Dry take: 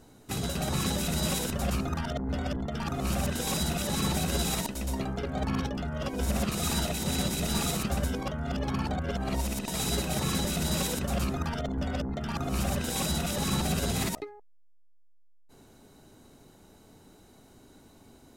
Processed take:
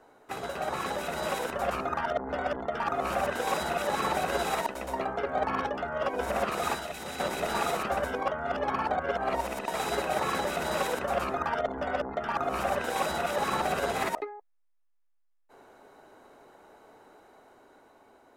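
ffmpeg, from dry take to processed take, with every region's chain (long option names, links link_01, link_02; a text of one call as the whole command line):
ffmpeg -i in.wav -filter_complex "[0:a]asettb=1/sr,asplit=3[link_01][link_02][link_03];[link_01]atrim=end=6.744[link_04];[link_02]atrim=start=6.74:end=7.2,asetpts=PTS-STARTPTS,afade=type=in:duration=0.004:curve=qsin,afade=type=out:start_time=0.456:duration=0.004:curve=qsin,bandreject=frequency=940:width=26,acrossover=split=240|1100|2800[link_05][link_06][link_07][link_08];[link_05]acompressor=threshold=-36dB:ratio=3[link_09];[link_06]acompressor=threshold=-47dB:ratio=3[link_10];[link_07]acompressor=threshold=-51dB:ratio=3[link_11];[link_08]acompressor=threshold=-36dB:ratio=3[link_12];[link_09][link_10][link_11][link_12]amix=inputs=4:normalize=0[link_13];[link_03]atrim=start=7.196[link_14];[link_04][link_13]acrossfade=duration=0.004:curve1=hsin:curve2=qsin[link_15];[link_15][link_14]acrossfade=duration=0.004:curve1=qsin:curve2=hsin,dynaudnorm=framelen=310:gausssize=9:maxgain=3.5dB,acrossover=split=430 2100:gain=0.0708 1 0.126[link_16][link_17][link_18];[link_16][link_17][link_18]amix=inputs=3:normalize=0,volume=5.5dB" out.wav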